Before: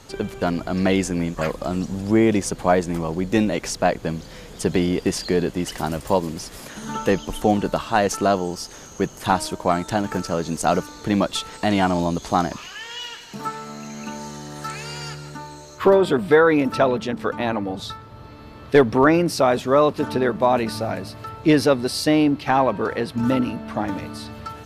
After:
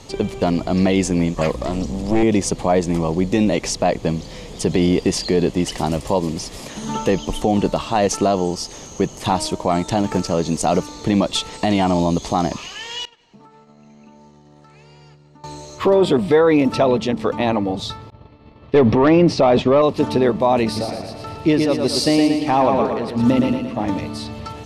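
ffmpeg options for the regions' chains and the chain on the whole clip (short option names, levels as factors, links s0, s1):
-filter_complex "[0:a]asettb=1/sr,asplit=3[s0][s1][s2];[s0]atrim=end=1.544[s3];[s1]atrim=start=1.54:end=2.23,asetpts=PTS-STARTPTS,afade=t=in:d=0.004:c=qsin,afade=t=out:st=0.686:d=0.004:c=qsin,highpass=150,aeval=exprs='val(0)+0.0224*(sin(2*PI*60*n/s)+sin(2*PI*2*60*n/s)/2+sin(2*PI*3*60*n/s)/3+sin(2*PI*4*60*n/s)/4+sin(2*PI*5*60*n/s)/5)':c=same,aeval=exprs='clip(val(0),-1,0.0316)':c=same[s4];[s2]atrim=start=2.226[s5];[s3][s4]acrossfade=d=0.004:c1=hsin:c2=qsin[s6];[s6][s5]acrossfade=d=0.004:c1=qsin:c2=hsin,asettb=1/sr,asplit=3[s7][s8][s9];[s7]atrim=end=13.054[s10];[s8]atrim=start=13.05:end=15.44,asetpts=PTS-STARTPTS,afade=t=in:d=0.004:c=qsin,afade=t=out:st=2.386:d=0.004:c=qsin,agate=range=0.178:threshold=0.0178:ratio=16:release=100:detection=peak,lowpass=f=1800:p=1,acompressor=threshold=0.00282:ratio=4:attack=3.2:release=140:knee=1:detection=peak[s11];[s9]atrim=start=15.436[s12];[s10][s11]acrossfade=d=0.004:c1=hsin:c2=qsin[s13];[s13][s12]acrossfade=d=0.004:c1=qsin:c2=hsin,asettb=1/sr,asplit=3[s14][s15][s16];[s14]atrim=end=18.104[s17];[s15]atrim=start=18.1:end=19.82,asetpts=PTS-STARTPTS,afade=t=in:d=0.004:c=qsin,afade=t=out:st=1.716:d=0.004:c=qsin,lowpass=3400,agate=range=0.0224:threshold=0.0282:ratio=3:release=100:detection=peak,acontrast=76[s18];[s16]atrim=start=19.816[s19];[s17][s18]acrossfade=d=0.004:c1=hsin:c2=qsin[s20];[s20][s19]acrossfade=d=0.004:c1=qsin:c2=hsin,asettb=1/sr,asplit=3[s21][s22][s23];[s21]atrim=end=20.654[s24];[s22]atrim=start=20.65:end=23.87,asetpts=PTS-STARTPTS,afade=t=in:d=0.004:c=qsin,afade=t=out:st=3.216:d=0.004:c=qsin,tremolo=f=1.5:d=0.65,aecho=1:1:115|230|345|460|575|690:0.562|0.287|0.146|0.0746|0.038|0.0194,atrim=end_sample=142002[s25];[s23]atrim=start=23.866[s26];[s24][s25]acrossfade=d=0.004:c1=hsin:c2=qsin[s27];[s27][s26]acrossfade=d=0.004:c1=qsin:c2=hsin,lowpass=8700,equalizer=f=1500:w=3.3:g=-11.5,alimiter=level_in=3.35:limit=0.891:release=50:level=0:latency=1,volume=0.562"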